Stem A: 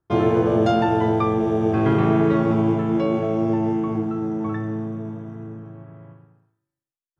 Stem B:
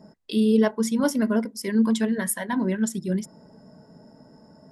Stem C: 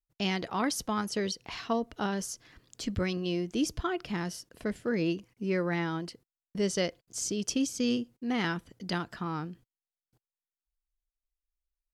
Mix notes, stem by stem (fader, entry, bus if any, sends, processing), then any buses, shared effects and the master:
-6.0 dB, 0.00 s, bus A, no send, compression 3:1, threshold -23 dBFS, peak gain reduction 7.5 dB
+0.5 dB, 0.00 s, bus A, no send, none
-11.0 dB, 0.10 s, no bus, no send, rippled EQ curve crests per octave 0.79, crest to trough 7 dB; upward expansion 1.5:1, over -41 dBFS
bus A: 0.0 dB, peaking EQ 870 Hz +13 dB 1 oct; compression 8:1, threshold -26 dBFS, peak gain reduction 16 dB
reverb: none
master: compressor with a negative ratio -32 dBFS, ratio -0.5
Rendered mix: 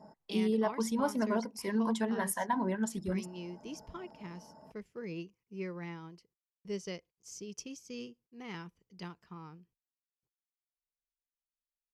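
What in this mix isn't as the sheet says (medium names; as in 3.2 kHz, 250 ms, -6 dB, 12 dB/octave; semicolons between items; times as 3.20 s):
stem A: muted; stem B +0.5 dB -> -9.0 dB; master: missing compressor with a negative ratio -32 dBFS, ratio -0.5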